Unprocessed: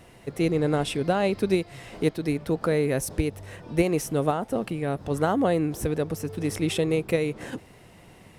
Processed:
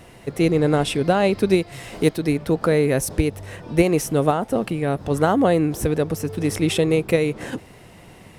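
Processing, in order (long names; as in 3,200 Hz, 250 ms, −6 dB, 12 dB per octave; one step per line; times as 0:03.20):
0:01.72–0:02.20: high-shelf EQ 5,900 Hz +6.5 dB
level +5.5 dB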